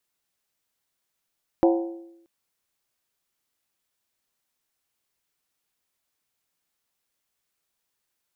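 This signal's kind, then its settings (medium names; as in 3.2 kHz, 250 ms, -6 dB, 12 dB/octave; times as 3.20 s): skin hit, lowest mode 337 Hz, modes 6, decay 0.86 s, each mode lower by 4.5 dB, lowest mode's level -14 dB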